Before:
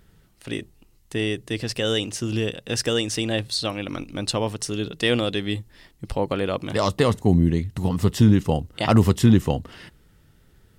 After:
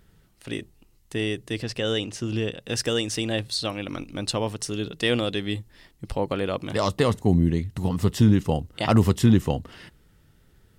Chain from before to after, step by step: 1.62–2.6 high shelf 7700 Hz -10.5 dB; gain -2 dB

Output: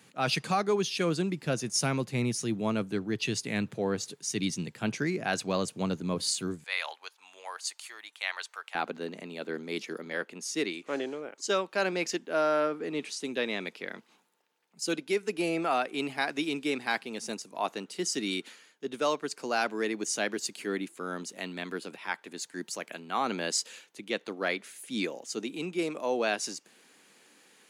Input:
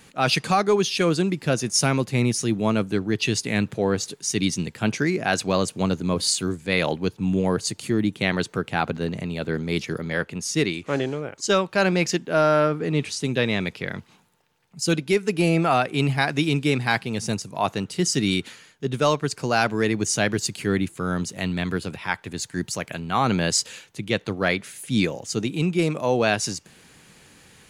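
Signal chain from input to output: HPF 110 Hz 24 dB/oct, from 6.64 s 830 Hz, from 8.75 s 240 Hz; gain -7.5 dB

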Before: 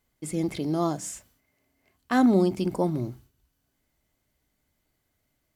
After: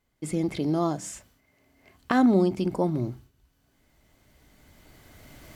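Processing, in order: recorder AGC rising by 11 dB/s; high shelf 6800 Hz -8 dB

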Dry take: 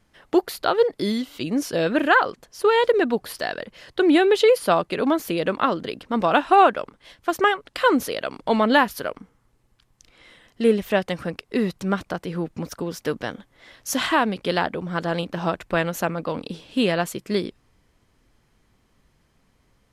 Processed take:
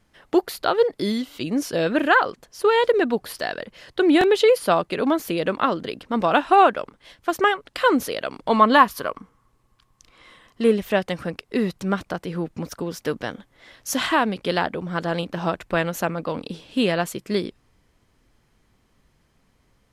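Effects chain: 8.5–10.7 bell 1100 Hz +12.5 dB 0.22 oct; stuck buffer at 4.19, samples 1024, times 1

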